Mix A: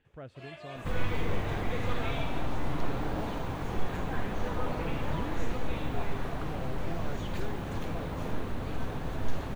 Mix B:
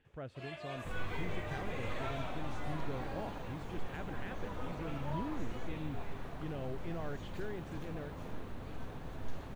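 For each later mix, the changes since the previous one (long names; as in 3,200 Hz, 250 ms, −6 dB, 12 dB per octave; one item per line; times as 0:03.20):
second sound −10.0 dB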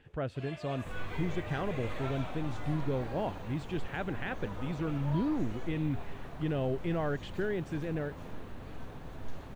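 speech +10.0 dB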